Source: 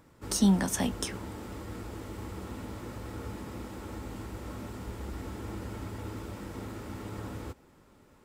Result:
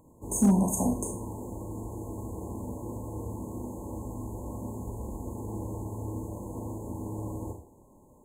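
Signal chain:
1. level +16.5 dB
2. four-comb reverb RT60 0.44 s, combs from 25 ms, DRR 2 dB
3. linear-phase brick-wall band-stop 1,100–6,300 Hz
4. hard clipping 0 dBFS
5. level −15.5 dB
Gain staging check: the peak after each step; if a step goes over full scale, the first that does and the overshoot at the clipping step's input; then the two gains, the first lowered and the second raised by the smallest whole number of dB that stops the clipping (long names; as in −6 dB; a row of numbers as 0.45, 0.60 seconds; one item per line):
+3.5, +5.0, +4.5, 0.0, −15.5 dBFS
step 1, 4.5 dB
step 1 +11.5 dB, step 5 −10.5 dB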